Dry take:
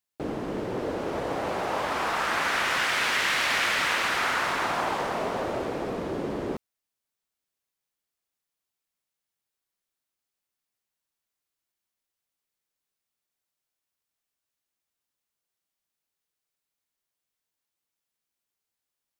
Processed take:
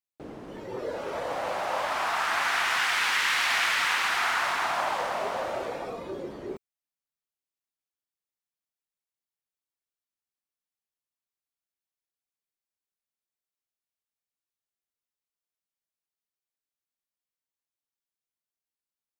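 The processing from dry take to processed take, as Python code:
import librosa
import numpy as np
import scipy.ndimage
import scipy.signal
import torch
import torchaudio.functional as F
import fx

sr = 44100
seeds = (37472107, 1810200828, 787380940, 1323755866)

y = fx.noise_reduce_blind(x, sr, reduce_db=10)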